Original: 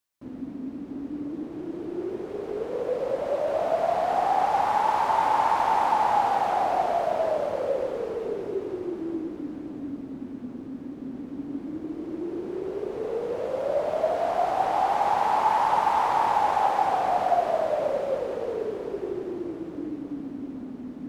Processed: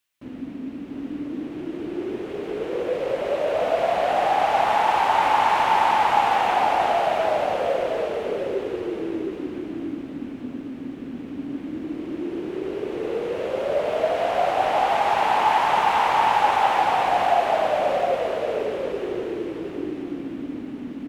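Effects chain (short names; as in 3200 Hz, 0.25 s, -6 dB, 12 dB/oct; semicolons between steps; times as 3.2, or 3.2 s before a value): EQ curve 1000 Hz 0 dB, 2800 Hz +10 dB, 4700 Hz +2 dB; on a send: echo 0.712 s -5 dB; on the sum: gain +2 dB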